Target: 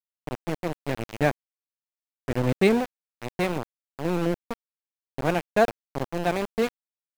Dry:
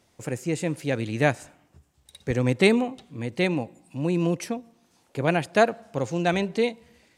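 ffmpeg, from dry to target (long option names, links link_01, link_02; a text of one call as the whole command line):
ffmpeg -i in.wav -af "aeval=exprs='val(0)*gte(abs(val(0)),0.0794)':channel_layout=same,highshelf=frequency=2200:gain=-9" out.wav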